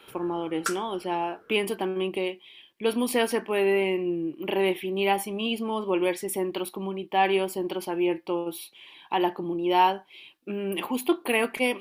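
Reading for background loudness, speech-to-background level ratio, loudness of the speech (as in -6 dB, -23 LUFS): -34.5 LUFS, 7.5 dB, -27.0 LUFS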